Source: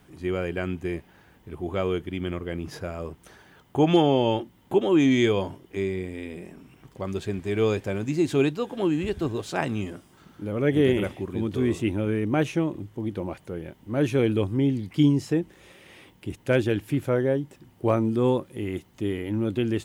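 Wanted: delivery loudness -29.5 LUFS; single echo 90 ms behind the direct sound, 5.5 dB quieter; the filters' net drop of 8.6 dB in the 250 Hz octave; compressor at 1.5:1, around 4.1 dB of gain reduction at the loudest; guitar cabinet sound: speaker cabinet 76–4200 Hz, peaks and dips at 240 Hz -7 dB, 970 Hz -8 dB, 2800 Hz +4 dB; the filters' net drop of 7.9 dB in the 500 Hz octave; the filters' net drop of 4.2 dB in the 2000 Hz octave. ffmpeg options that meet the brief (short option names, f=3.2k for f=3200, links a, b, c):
-af "equalizer=f=250:t=o:g=-6,equalizer=f=500:t=o:g=-7,equalizer=f=2k:t=o:g=-6,acompressor=threshold=-31dB:ratio=1.5,highpass=76,equalizer=f=240:t=q:w=4:g=-7,equalizer=f=970:t=q:w=4:g=-8,equalizer=f=2.8k:t=q:w=4:g=4,lowpass=f=4.2k:w=0.5412,lowpass=f=4.2k:w=1.3066,aecho=1:1:90:0.531,volume=4.5dB"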